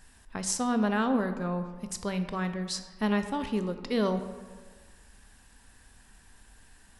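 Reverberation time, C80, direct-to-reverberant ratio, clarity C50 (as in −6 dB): 1.5 s, 11.5 dB, 8.5 dB, 10.0 dB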